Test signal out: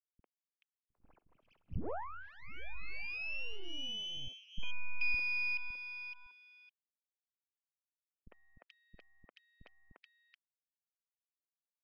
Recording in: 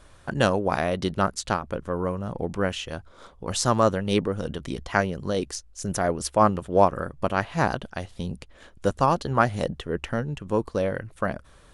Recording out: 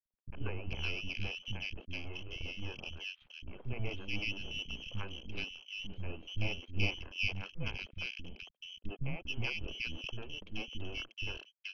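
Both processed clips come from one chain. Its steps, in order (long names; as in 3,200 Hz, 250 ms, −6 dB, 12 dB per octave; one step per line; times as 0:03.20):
spectral magnitudes quantised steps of 30 dB
parametric band 2,000 Hz −5 dB 0.42 octaves
in parallel at +2 dB: downward compressor, threshold −34 dBFS
on the sum: dead-zone distortion −35 dBFS
phaser with its sweep stopped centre 350 Hz, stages 6
voice inversion scrambler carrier 3,200 Hz
half-wave rectification
high-frequency loss of the air 340 metres
three-band delay without the direct sound lows, mids, highs 50/430 ms, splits 290/1,900 Hz
level −2.5 dB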